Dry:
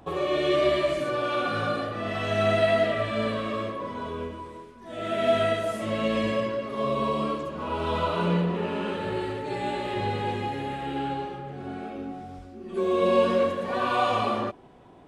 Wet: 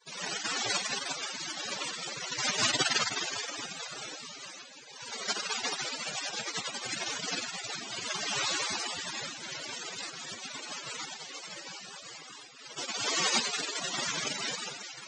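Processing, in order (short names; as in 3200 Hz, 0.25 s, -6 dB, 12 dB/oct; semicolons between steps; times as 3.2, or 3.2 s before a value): spectral contrast raised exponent 1.8; spring tank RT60 2.8 s, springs 44/52 ms, chirp 25 ms, DRR -2 dB; noise vocoder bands 1; loudest bins only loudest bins 64; gain -7.5 dB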